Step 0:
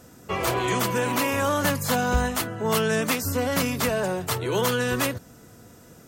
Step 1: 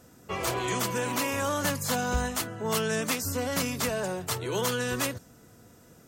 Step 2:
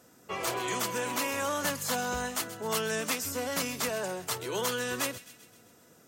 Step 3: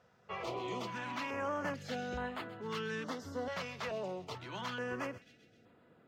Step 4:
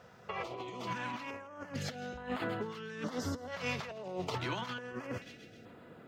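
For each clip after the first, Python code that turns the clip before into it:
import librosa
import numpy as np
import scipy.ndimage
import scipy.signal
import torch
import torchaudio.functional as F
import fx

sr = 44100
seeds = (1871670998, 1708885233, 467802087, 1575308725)

y1 = fx.dynamic_eq(x, sr, hz=6700.0, q=0.82, threshold_db=-44.0, ratio=4.0, max_db=5)
y1 = y1 * librosa.db_to_amplitude(-5.5)
y2 = fx.highpass(y1, sr, hz=290.0, slope=6)
y2 = fx.echo_wet_highpass(y2, sr, ms=130, feedback_pct=56, hz=2200.0, wet_db=-14)
y2 = y2 * librosa.db_to_amplitude(-1.5)
y3 = fx.air_absorb(y2, sr, metres=240.0)
y3 = fx.filter_held_notch(y3, sr, hz=2.3, low_hz=290.0, high_hz=5800.0)
y3 = y3 * librosa.db_to_amplitude(-3.5)
y4 = fx.over_compress(y3, sr, threshold_db=-44.0, ratio=-0.5)
y4 = y4 + 10.0 ** (-21.5 / 20.0) * np.pad(y4, (int(164 * sr / 1000.0), 0))[:len(y4)]
y4 = y4 * librosa.db_to_amplitude(5.5)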